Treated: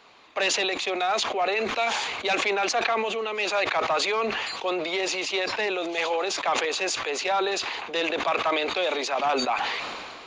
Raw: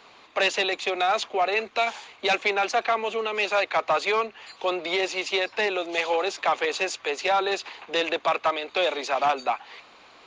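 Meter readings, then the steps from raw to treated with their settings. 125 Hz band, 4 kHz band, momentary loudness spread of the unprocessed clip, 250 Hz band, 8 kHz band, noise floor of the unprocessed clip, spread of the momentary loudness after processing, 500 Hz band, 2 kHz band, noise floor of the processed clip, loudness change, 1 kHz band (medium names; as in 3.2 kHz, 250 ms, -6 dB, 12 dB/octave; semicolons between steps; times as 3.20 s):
no reading, +1.5 dB, 6 LU, +2.0 dB, +6.0 dB, -53 dBFS, 4 LU, -1.0 dB, 0.0 dB, -41 dBFS, 0.0 dB, -1.0 dB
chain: decay stretcher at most 28 dB/s; trim -2.5 dB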